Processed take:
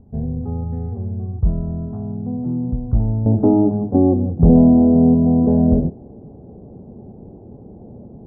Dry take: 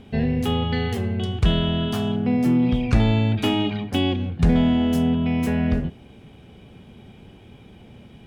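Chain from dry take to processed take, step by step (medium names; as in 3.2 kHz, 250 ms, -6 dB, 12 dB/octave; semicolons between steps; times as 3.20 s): inverse Chebyshev low-pass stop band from 2.5 kHz, stop band 60 dB; peaking EQ 440 Hz -11.5 dB 2.8 oct, from 3.26 s +5.5 dB; trim +4 dB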